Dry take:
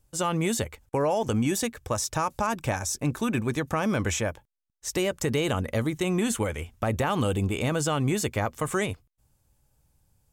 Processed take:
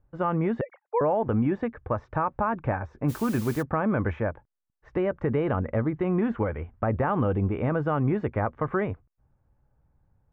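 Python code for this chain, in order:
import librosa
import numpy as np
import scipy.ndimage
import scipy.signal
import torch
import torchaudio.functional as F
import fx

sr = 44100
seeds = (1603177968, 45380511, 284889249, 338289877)

y = fx.sine_speech(x, sr, at=(0.61, 1.01))
y = scipy.signal.sosfilt(scipy.signal.butter(4, 1700.0, 'lowpass', fs=sr, output='sos'), y)
y = fx.dmg_noise_colour(y, sr, seeds[0], colour='white', level_db=-46.0, at=(3.08, 3.61), fade=0.02)
y = y * librosa.db_to_amplitude(1.0)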